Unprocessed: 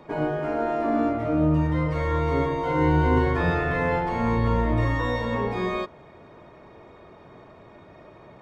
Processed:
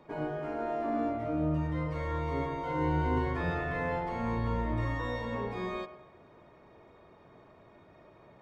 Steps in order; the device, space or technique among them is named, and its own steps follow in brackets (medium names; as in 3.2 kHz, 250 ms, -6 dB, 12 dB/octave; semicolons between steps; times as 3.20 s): filtered reverb send (on a send: high-pass 390 Hz + low-pass 3.2 kHz + reverberation RT60 0.80 s, pre-delay 96 ms, DRR 12.5 dB); on the sum: trim -9 dB